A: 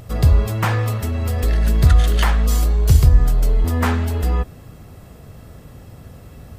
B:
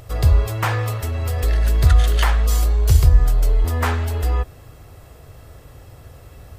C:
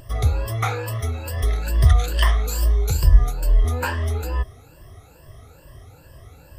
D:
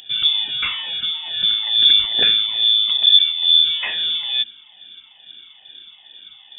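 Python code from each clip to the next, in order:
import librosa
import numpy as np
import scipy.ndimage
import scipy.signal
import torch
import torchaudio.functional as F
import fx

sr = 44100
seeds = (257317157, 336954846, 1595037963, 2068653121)

y1 = fx.peak_eq(x, sr, hz=200.0, db=-14.5, octaves=0.75)
y2 = fx.spec_ripple(y1, sr, per_octave=1.3, drift_hz=2.3, depth_db=17)
y2 = fx.wow_flutter(y2, sr, seeds[0], rate_hz=2.1, depth_cents=39.0)
y2 = F.gain(torch.from_numpy(y2), -5.5).numpy()
y3 = 10.0 ** (-7.0 / 20.0) * np.tanh(y2 / 10.0 ** (-7.0 / 20.0))
y3 = fx.freq_invert(y3, sr, carrier_hz=3500)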